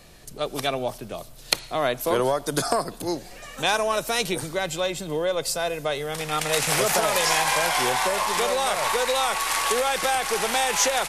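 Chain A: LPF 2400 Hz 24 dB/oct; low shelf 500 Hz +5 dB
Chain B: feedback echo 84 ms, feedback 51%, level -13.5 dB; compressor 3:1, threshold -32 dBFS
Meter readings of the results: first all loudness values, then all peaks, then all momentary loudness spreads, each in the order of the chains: -24.0, -32.5 LUFS; -5.5, -8.5 dBFS; 7, 6 LU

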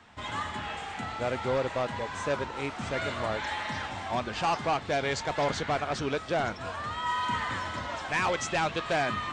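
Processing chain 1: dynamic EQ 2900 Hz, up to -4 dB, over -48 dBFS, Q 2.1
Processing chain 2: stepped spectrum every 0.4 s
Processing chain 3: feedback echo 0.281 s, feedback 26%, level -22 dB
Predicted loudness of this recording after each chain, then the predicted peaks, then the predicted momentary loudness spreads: -31.5, -34.0, -31.0 LUFS; -21.0, -21.0, -21.0 dBFS; 6, 5, 6 LU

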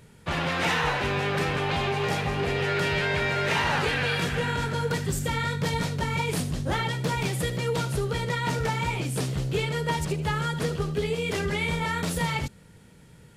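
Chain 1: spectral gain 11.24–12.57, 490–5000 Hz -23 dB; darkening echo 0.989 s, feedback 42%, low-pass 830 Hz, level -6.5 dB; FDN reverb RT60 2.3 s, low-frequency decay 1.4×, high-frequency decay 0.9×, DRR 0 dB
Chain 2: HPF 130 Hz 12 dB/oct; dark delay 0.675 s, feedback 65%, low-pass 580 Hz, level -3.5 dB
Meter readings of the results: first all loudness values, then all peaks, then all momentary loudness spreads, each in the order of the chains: -23.0, -26.5 LUFS; -7.0, -12.5 dBFS; 5, 4 LU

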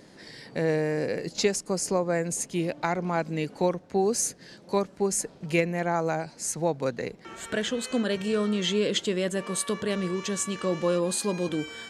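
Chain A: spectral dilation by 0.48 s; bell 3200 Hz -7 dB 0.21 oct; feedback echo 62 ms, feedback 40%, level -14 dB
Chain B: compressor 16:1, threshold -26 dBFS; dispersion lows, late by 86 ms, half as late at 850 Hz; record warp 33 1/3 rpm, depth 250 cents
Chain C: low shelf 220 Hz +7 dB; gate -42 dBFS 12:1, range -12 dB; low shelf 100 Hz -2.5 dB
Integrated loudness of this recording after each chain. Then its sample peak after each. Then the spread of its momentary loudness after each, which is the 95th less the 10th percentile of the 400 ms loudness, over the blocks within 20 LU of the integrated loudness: -19.5, -32.0, -26.5 LUFS; -2.5, -15.0, -9.0 dBFS; 6, 5, 5 LU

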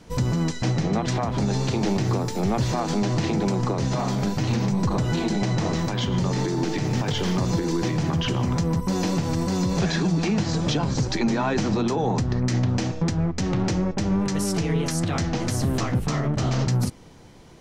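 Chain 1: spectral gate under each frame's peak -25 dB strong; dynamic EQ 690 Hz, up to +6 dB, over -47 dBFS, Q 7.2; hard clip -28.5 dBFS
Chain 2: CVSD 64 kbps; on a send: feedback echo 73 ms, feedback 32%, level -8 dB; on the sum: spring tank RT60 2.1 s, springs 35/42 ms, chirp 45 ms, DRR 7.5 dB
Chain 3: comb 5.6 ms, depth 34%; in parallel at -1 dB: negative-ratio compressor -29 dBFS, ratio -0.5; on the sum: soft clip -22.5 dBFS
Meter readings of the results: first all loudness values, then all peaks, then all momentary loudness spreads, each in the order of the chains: -31.0, -23.0, -26.5 LUFS; -28.5, -10.0, -22.5 dBFS; 1, 3, 1 LU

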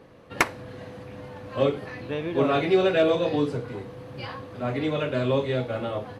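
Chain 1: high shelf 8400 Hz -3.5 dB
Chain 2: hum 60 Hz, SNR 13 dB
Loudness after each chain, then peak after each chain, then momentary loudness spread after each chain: -25.5, -26.0 LUFS; -10.5, -10.0 dBFS; 19, 17 LU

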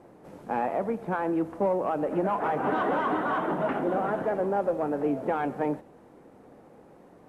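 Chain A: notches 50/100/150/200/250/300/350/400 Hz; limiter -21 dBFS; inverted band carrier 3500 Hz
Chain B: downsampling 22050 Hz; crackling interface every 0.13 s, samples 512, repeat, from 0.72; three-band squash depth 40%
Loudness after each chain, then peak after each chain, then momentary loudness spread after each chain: -27.0, -28.0 LUFS; -19.5, -16.0 dBFS; 5, 18 LU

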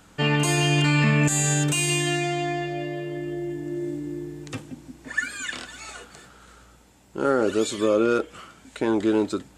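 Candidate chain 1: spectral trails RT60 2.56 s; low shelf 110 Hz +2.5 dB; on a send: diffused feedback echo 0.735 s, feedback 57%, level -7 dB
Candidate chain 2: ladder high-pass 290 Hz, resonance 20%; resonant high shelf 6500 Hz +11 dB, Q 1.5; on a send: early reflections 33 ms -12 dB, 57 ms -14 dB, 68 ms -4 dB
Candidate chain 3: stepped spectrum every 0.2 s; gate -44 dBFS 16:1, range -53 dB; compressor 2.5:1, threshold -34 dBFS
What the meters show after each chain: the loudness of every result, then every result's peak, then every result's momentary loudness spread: -21.0, -23.5, -34.0 LUFS; -6.0, -8.5, -18.0 dBFS; 12, 22, 10 LU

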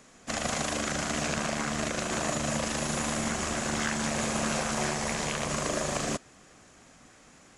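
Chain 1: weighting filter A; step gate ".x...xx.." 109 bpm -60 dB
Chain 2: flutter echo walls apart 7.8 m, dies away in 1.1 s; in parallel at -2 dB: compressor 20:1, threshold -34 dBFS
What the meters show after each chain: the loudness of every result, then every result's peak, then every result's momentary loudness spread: -35.0, -24.5 LUFS; -15.0, -12.0 dBFS; 10, 5 LU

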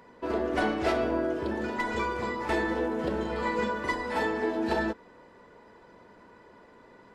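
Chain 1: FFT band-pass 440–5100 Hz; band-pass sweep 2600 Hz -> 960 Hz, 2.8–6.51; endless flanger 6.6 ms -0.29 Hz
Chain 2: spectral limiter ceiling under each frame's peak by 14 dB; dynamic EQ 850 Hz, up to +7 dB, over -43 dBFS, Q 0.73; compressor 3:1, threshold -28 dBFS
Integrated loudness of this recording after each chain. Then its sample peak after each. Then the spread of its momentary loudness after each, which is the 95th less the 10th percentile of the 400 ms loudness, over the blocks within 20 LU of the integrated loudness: -42.0, -30.5 LUFS; -23.0, -16.5 dBFS; 16, 2 LU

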